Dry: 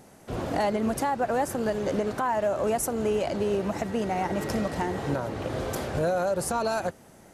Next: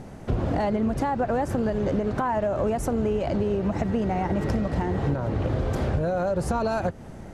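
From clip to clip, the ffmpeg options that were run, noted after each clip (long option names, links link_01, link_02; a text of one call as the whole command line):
ffmpeg -i in.wav -af "aemphasis=mode=reproduction:type=bsi,acompressor=threshold=-29dB:ratio=6,volume=7dB" out.wav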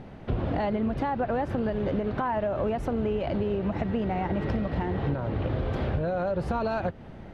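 ffmpeg -i in.wav -af "highshelf=frequency=5100:width_type=q:width=1.5:gain=-14,volume=-3dB" out.wav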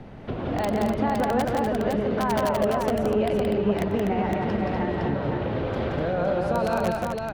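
ffmpeg -i in.wav -filter_complex "[0:a]acrossover=split=160|490|1100[link_01][link_02][link_03][link_04];[link_01]acompressor=threshold=-39dB:ratio=6[link_05];[link_03]aeval=exprs='(mod(18.8*val(0)+1,2)-1)/18.8':channel_layout=same[link_06];[link_05][link_02][link_06][link_04]amix=inputs=4:normalize=0,aecho=1:1:92|174|247|511:0.133|0.668|0.501|0.631,volume=1.5dB" out.wav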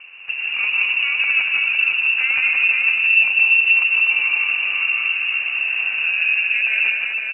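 ffmpeg -i in.wav -af "highpass=frequency=380:width_type=q:width=3.9,aecho=1:1:156:0.501,lowpass=frequency=2600:width_type=q:width=0.5098,lowpass=frequency=2600:width_type=q:width=0.6013,lowpass=frequency=2600:width_type=q:width=0.9,lowpass=frequency=2600:width_type=q:width=2.563,afreqshift=-3100" out.wav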